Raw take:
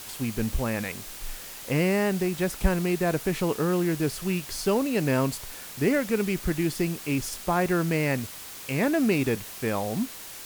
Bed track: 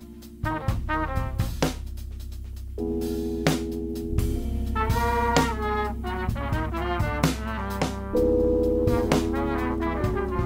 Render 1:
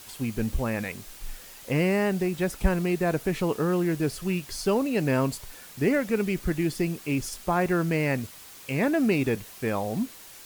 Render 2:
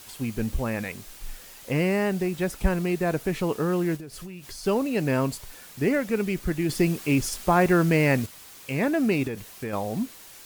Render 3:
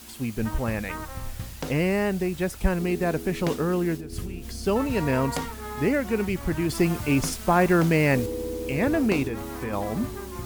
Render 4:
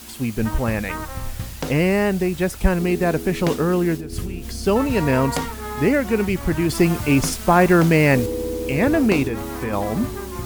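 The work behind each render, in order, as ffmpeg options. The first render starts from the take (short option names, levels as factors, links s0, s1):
-af "afftdn=nr=6:nf=-41"
-filter_complex "[0:a]asplit=3[s0][s1][s2];[s0]afade=t=out:st=3.96:d=0.02[s3];[s1]acompressor=threshold=0.0178:ratio=16:attack=3.2:release=140:knee=1:detection=peak,afade=t=in:st=3.96:d=0.02,afade=t=out:st=4.63:d=0.02[s4];[s2]afade=t=in:st=4.63:d=0.02[s5];[s3][s4][s5]amix=inputs=3:normalize=0,asettb=1/sr,asplit=3[s6][s7][s8];[s6]atrim=end=6.694[s9];[s7]atrim=start=6.69:end=8.26,asetpts=PTS-STARTPTS,afade=t=in:d=0.004:c=qsin,afade=t=out:st=1.566:d=0.004:c=qsin,acontrast=21[s10];[s8]atrim=start=8.256[s11];[s9][s10]acrossfade=d=0.004:c1=hsin:c2=qsin[s12];[s12][s11]acrossfade=d=0.004:c1=qsin:c2=hsin,asettb=1/sr,asplit=3[s13][s14][s15];[s13]atrim=end=9.274[s16];[s14]atrim=start=9.27:end=9.73,asetpts=PTS-STARTPTS,afade=t=in:d=0.004:c=qsin,afade=t=out:st=0.456:d=0.004:c=qsin,acompressor=threshold=0.0447:ratio=6:attack=3.2:release=140:knee=1:detection=peak[s17];[s15]atrim=start=9.726[s18];[s16][s17]acrossfade=d=0.004:c1=hsin:c2=qsin[s19];[s19][s18]acrossfade=d=0.004:c1=qsin:c2=hsin"
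-filter_complex "[1:a]volume=0.335[s0];[0:a][s0]amix=inputs=2:normalize=0"
-af "volume=1.88"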